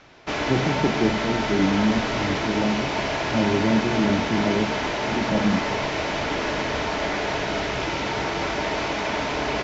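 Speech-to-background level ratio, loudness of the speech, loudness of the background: 0.5 dB, -25.0 LUFS, -25.5 LUFS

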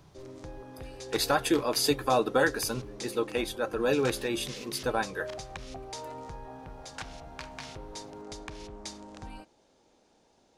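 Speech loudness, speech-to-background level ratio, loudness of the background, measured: -29.0 LUFS, 13.5 dB, -42.5 LUFS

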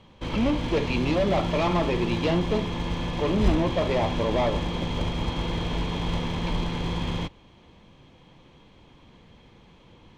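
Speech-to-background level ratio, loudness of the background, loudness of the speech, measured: 2.5 dB, -29.5 LUFS, -27.0 LUFS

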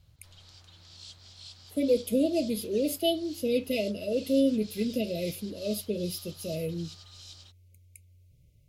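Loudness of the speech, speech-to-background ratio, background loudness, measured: -29.5 LUFS, 17.5 dB, -47.0 LUFS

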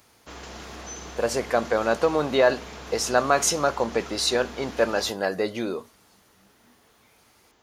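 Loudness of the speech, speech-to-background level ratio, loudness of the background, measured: -24.5 LUFS, 15.5 dB, -40.0 LUFS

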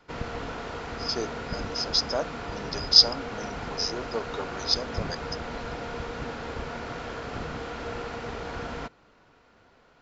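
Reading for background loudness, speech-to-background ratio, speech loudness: -35.5 LUFS, 11.5 dB, -24.0 LUFS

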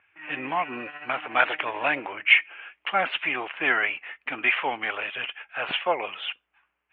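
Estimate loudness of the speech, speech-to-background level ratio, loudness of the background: -25.5 LUFS, 15.0 dB, -40.5 LUFS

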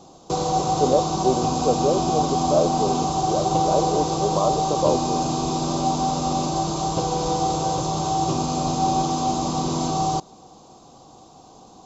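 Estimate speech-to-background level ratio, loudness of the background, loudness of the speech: -2.0 dB, -23.0 LUFS, -25.0 LUFS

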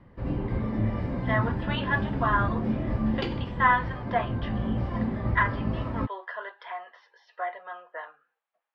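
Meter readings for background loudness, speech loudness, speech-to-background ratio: -30.5 LUFS, -30.0 LUFS, 0.5 dB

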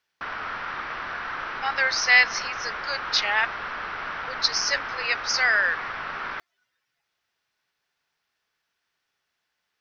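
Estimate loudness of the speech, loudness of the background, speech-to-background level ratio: -23.0 LUFS, -32.0 LUFS, 9.0 dB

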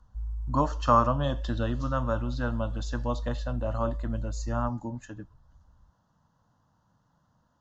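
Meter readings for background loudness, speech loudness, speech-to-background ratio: -37.0 LUFS, -30.0 LUFS, 7.0 dB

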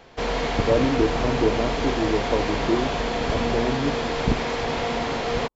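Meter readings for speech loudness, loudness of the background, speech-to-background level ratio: -26.0 LUFS, -25.5 LUFS, -0.5 dB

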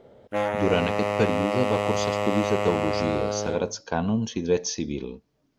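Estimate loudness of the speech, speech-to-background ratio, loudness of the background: -27.5 LUFS, -0.5 dB, -27.0 LUFS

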